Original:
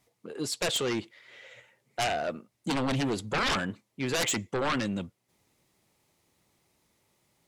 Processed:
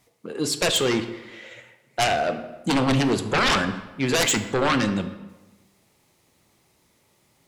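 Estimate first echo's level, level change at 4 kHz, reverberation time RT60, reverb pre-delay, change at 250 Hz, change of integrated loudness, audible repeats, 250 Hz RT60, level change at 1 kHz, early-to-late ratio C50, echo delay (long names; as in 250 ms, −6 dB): no echo audible, +7.5 dB, 1.1 s, 19 ms, +8.0 dB, +7.5 dB, no echo audible, 1.1 s, +7.5 dB, 10.5 dB, no echo audible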